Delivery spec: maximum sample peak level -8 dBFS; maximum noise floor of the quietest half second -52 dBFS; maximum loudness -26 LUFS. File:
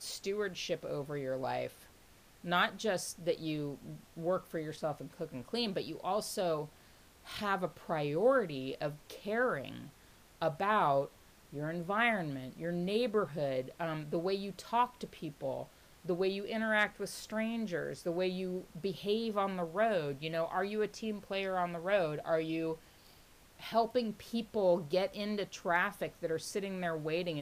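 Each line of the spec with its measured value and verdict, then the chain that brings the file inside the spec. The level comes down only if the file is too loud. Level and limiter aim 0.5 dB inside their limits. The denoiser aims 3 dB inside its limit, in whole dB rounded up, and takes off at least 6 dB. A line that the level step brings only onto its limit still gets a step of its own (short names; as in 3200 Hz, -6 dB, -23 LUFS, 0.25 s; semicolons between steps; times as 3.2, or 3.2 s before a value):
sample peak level -16.5 dBFS: OK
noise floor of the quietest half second -61 dBFS: OK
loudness -35.5 LUFS: OK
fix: none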